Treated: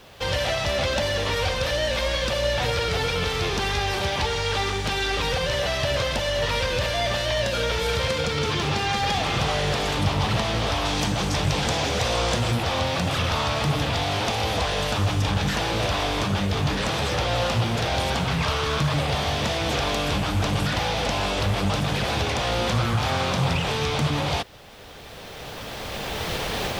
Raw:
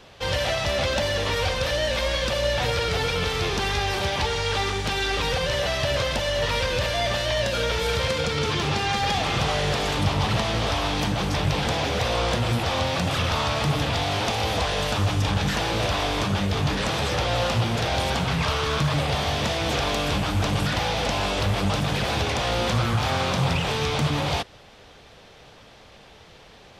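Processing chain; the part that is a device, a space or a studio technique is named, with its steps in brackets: cheap recorder with automatic gain (white noise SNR 39 dB; recorder AGC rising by 11 dB/s); 10.85–12.51 bell 7100 Hz +6 dB 1.1 oct

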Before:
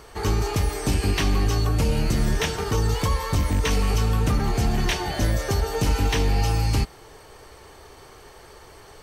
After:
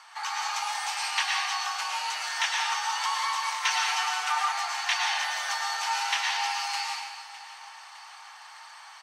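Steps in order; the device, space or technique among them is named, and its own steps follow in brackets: supermarket ceiling speaker (BPF 350–6900 Hz; reverb RT60 1.1 s, pre-delay 98 ms, DRR -1 dB); elliptic high-pass 830 Hz, stop band 60 dB; 3.62–4.52 comb 6.7 ms, depth 73%; feedback echo 0.609 s, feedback 56%, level -18 dB

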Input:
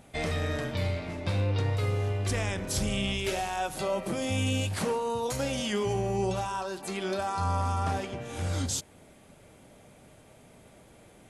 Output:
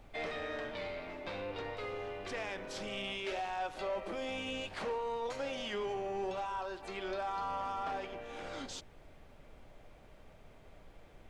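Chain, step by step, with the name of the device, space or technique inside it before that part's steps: aircraft cabin announcement (BPF 370–3500 Hz; soft clip -25 dBFS, distortion -20 dB; brown noise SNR 15 dB); gain -4 dB

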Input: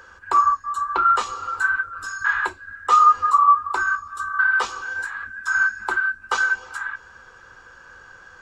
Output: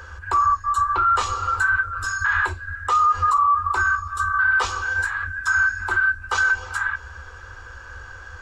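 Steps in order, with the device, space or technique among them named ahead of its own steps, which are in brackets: car stereo with a boomy subwoofer (resonant low shelf 110 Hz +10.5 dB, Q 3; limiter -17 dBFS, peak gain reduction 11.5 dB); gain +5 dB

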